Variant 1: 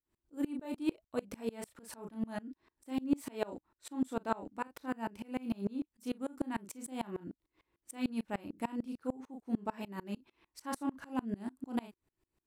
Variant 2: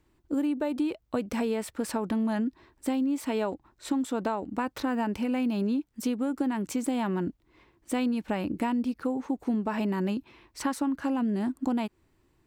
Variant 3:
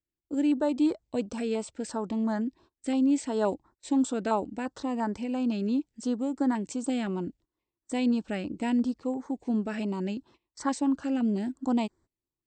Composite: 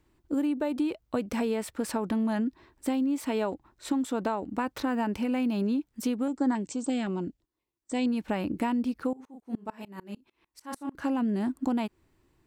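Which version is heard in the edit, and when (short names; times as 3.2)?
2
6.28–8.06 from 3
9.13–10.95 from 1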